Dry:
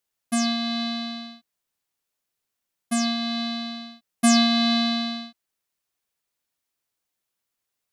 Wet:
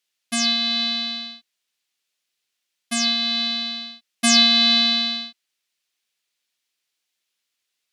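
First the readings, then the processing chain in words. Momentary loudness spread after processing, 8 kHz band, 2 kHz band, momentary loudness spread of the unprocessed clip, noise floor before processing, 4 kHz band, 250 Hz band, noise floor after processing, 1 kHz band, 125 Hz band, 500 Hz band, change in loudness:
18 LU, +5.0 dB, +6.0 dB, 19 LU, -83 dBFS, +9.0 dB, -4.0 dB, -79 dBFS, -2.0 dB, n/a, -2.5 dB, +5.5 dB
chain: weighting filter D; gain -2 dB

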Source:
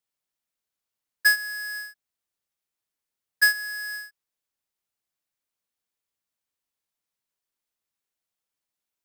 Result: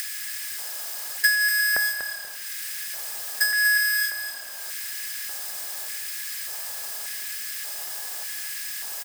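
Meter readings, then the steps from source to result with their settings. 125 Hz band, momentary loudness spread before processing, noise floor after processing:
n/a, 15 LU, -36 dBFS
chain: per-bin compression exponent 0.6; tone controls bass +1 dB, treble +6 dB; in parallel at -6.5 dB: fuzz box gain 33 dB, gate -37 dBFS; on the sum: de-hum 162.9 Hz, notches 6; upward compressor, threshold -26 dBFS; high shelf 3400 Hz +5 dB; compressor 5:1, threshold -27 dBFS, peak gain reduction 19 dB; short-mantissa float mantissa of 2-bit; on a send: frequency-shifting echo 0.342 s, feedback 31%, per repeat -36 Hz, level -16 dB; on the sum: requantised 8-bit, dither triangular; LFO high-pass square 0.85 Hz 630–1900 Hz; lo-fi delay 0.242 s, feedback 35%, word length 7-bit, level -8 dB; gain +4 dB

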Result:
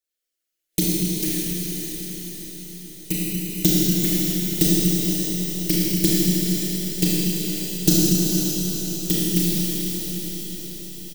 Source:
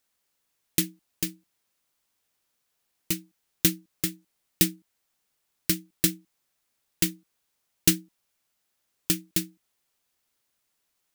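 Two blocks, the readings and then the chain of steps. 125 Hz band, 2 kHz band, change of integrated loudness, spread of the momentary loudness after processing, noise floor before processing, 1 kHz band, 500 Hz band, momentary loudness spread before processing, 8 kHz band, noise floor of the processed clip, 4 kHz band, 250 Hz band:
+13.5 dB, +2.5 dB, +6.5 dB, 13 LU, -77 dBFS, n/a, +13.0 dB, 9 LU, +7.0 dB, -81 dBFS, +7.5 dB, +12.5 dB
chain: formant sharpening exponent 1.5; spectral noise reduction 14 dB; comb 6.1 ms, depth 84%; envelope phaser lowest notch 160 Hz, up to 2300 Hz, full sweep at -18 dBFS; diffused feedback echo 0.474 s, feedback 61%, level -7 dB; Schroeder reverb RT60 3.4 s, combs from 26 ms, DRR -7 dB

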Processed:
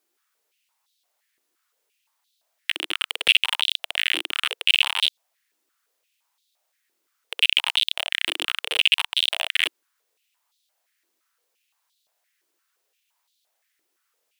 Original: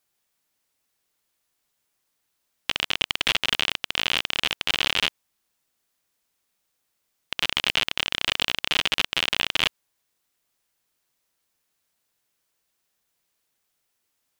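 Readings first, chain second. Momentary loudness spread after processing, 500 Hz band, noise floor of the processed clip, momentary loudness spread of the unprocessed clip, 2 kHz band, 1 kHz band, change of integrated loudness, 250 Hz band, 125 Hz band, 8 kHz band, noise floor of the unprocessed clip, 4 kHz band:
8 LU, -3.5 dB, -76 dBFS, 5 LU, +2.0 dB, -3.0 dB, +2.5 dB, -7.5 dB, under -20 dB, -0.5 dB, -76 dBFS, +2.5 dB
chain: hard clip -12.5 dBFS, distortion -10 dB; stepped high-pass 5.8 Hz 330–3700 Hz

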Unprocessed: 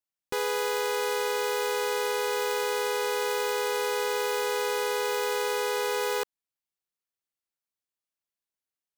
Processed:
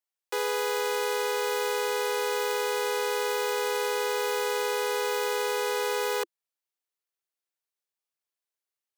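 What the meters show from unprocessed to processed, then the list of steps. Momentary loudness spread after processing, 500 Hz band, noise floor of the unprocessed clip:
1 LU, 0.0 dB, under -85 dBFS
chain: steep high-pass 340 Hz 96 dB/oct

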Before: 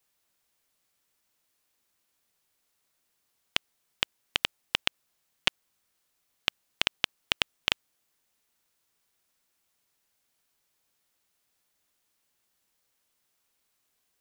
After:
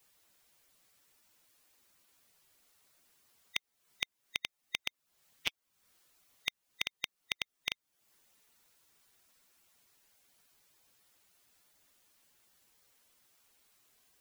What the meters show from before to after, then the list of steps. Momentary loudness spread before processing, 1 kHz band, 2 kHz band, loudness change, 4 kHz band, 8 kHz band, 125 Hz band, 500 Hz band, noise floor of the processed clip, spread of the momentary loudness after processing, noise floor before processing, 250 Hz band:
5 LU, -13.5 dB, -7.0 dB, -8.5 dB, -10.0 dB, -5.0 dB, -12.0 dB, -13.0 dB, -84 dBFS, 3 LU, -76 dBFS, -12.5 dB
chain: bin magnitudes rounded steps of 15 dB; compressor 4:1, threshold -43 dBFS, peak gain reduction 20.5 dB; gain +7 dB

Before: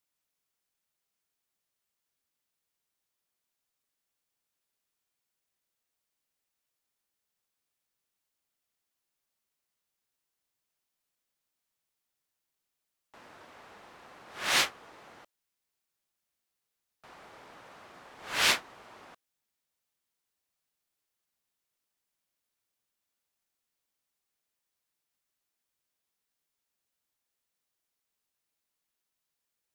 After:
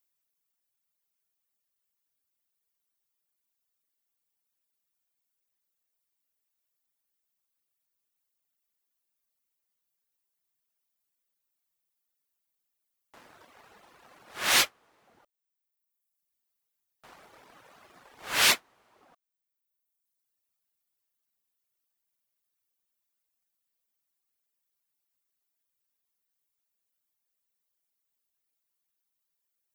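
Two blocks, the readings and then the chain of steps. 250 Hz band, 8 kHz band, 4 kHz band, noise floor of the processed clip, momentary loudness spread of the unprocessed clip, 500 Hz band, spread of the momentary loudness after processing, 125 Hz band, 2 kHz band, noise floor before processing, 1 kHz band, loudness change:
+1.5 dB, +5.5 dB, +3.0 dB, -83 dBFS, 10 LU, +1.5 dB, 9 LU, +1.5 dB, +2.5 dB, under -85 dBFS, +2.0 dB, +3.5 dB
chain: reverb removal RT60 1.4 s; high shelf 11000 Hz +12 dB; sample leveller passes 1

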